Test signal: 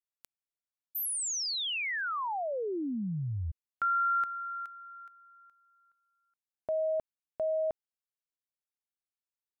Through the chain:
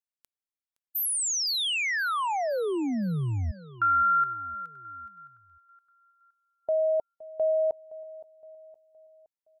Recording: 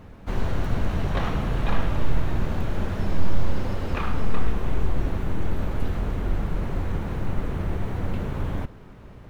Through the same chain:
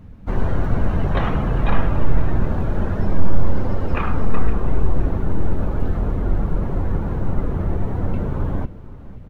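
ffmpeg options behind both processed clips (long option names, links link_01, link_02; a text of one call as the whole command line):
ffmpeg -i in.wav -filter_complex "[0:a]afftdn=noise_reduction=12:noise_floor=-38,asplit=2[link_01][link_02];[link_02]aecho=0:1:517|1034|1551|2068:0.119|0.0547|0.0251|0.0116[link_03];[link_01][link_03]amix=inputs=2:normalize=0,volume=5.5dB" out.wav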